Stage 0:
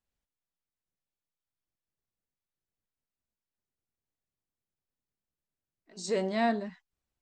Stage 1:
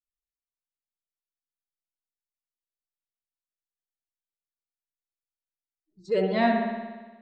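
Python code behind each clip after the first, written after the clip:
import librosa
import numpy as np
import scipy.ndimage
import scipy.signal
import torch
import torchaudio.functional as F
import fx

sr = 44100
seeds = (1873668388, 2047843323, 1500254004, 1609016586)

y = fx.bin_expand(x, sr, power=2.0)
y = fx.env_lowpass(y, sr, base_hz=350.0, full_db=-32.0)
y = fx.rev_spring(y, sr, rt60_s=1.3, pass_ms=(59,), chirp_ms=60, drr_db=2.0)
y = y * 10.0 ** (6.0 / 20.0)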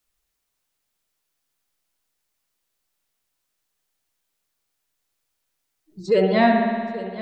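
y = x + 10.0 ** (-20.0 / 20.0) * np.pad(x, (int(825 * sr / 1000.0), 0))[:len(x)]
y = fx.band_squash(y, sr, depth_pct=40)
y = y * 10.0 ** (6.5 / 20.0)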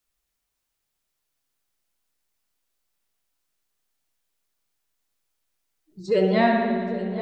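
y = fx.echo_opening(x, sr, ms=264, hz=200, octaves=1, feedback_pct=70, wet_db=-6)
y = fx.rev_plate(y, sr, seeds[0], rt60_s=1.5, hf_ratio=0.95, predelay_ms=0, drr_db=9.0)
y = y * 10.0 ** (-3.0 / 20.0)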